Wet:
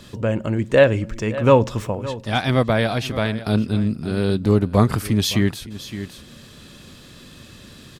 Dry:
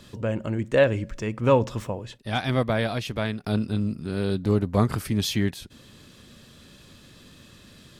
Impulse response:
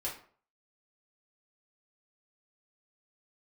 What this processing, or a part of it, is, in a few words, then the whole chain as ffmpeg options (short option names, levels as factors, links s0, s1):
ducked delay: -filter_complex "[0:a]asplit=3[s0][s1][s2];[s1]adelay=565,volume=0.562[s3];[s2]apad=whole_len=377377[s4];[s3][s4]sidechaincompress=threshold=0.02:ratio=5:attack=9.2:release=815[s5];[s0][s5]amix=inputs=2:normalize=0,volume=1.88"